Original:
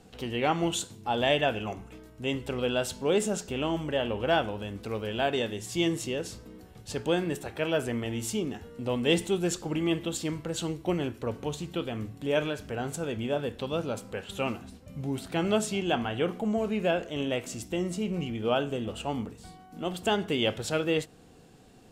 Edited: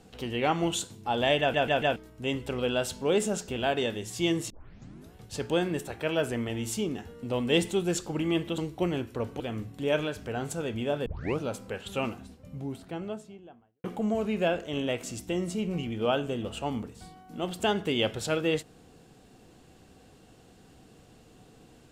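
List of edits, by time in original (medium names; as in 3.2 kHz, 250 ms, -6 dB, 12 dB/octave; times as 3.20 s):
1.40 s: stutter in place 0.14 s, 4 plays
3.57–5.13 s: delete
6.06 s: tape start 0.64 s
10.14–10.65 s: delete
11.47–11.83 s: delete
13.49 s: tape start 0.33 s
14.32–16.27 s: studio fade out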